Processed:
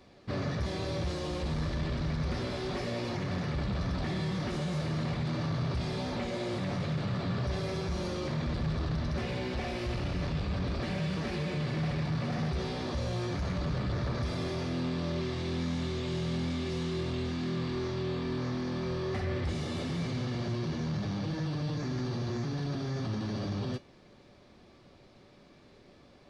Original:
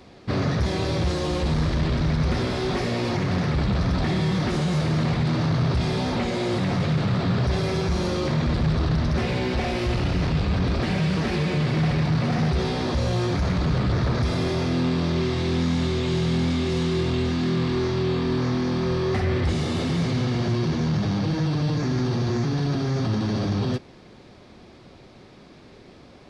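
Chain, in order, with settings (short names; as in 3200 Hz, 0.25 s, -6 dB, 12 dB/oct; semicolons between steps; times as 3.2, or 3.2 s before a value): resonator 580 Hz, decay 0.22 s, harmonics all, mix 70%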